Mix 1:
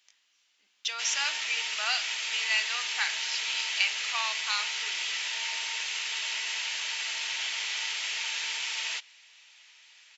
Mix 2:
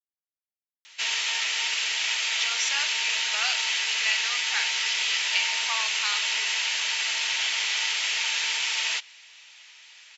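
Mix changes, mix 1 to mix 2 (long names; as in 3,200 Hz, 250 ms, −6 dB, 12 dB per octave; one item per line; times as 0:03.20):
speech: entry +1.55 s
background +6.0 dB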